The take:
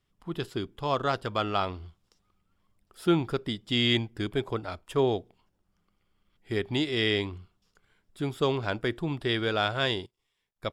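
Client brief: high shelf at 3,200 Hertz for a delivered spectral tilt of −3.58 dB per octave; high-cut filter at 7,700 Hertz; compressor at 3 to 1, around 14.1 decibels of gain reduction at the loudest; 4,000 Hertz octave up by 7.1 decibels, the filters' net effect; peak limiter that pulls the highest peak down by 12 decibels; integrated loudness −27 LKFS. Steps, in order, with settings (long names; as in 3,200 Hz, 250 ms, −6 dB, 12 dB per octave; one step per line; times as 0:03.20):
low-pass filter 7,700 Hz
high-shelf EQ 3,200 Hz +5.5 dB
parametric band 4,000 Hz +5.5 dB
downward compressor 3 to 1, threshold −37 dBFS
level +16.5 dB
brickwall limiter −15 dBFS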